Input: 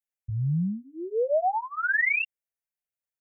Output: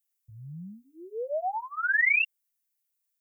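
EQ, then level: tilt EQ +4.5 dB/octave; -3.5 dB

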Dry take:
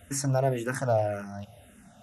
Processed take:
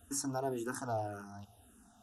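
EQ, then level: static phaser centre 570 Hz, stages 6; -4.0 dB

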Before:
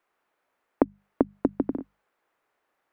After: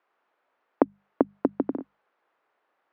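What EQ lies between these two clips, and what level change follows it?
high-pass 420 Hz 6 dB/octave; distance through air 210 m; peaking EQ 2.1 kHz -2.5 dB; +5.0 dB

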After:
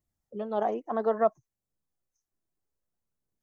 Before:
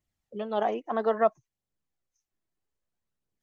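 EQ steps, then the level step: peaking EQ 2.8 kHz -10.5 dB 1.5 oct; 0.0 dB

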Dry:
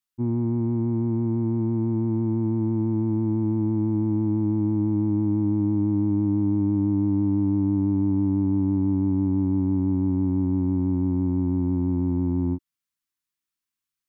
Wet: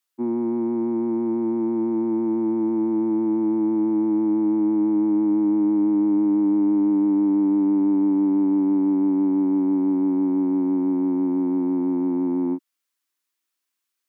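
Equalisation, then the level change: high-pass 270 Hz 24 dB/octave; +6.5 dB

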